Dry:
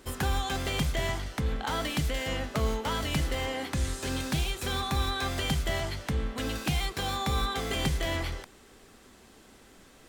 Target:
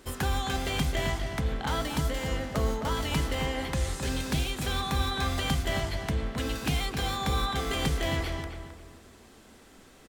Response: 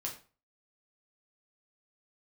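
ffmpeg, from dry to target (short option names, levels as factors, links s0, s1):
-filter_complex "[0:a]asettb=1/sr,asplit=3[s0][s1][s2];[s0]atrim=end=1.834[s3];[s1]atrim=start=1.83:end=2.97,asetpts=PTS-STARTPTS,afade=t=in:d=0.004:c=qsin,afade=t=out:st=1.136:d=0.004:c=qsin,equalizer=f=2600:t=o:w=1:g=-5[s4];[s2]atrim=start=2.966[s5];[s3][s4]acrossfade=d=0.004:c1=hsin:c2=qsin[s6];[s6][s5]acrossfade=d=0.004:c1=qsin:c2=hsin,asplit=2[s7][s8];[s8]adelay=264,lowpass=f=2000:p=1,volume=0.501,asplit=2[s9][s10];[s10]adelay=264,lowpass=f=2000:p=1,volume=0.36,asplit=2[s11][s12];[s12]adelay=264,lowpass=f=2000:p=1,volume=0.36,asplit=2[s13][s14];[s14]adelay=264,lowpass=f=2000:p=1,volume=0.36[s15];[s7][s9][s11][s13][s15]amix=inputs=5:normalize=0"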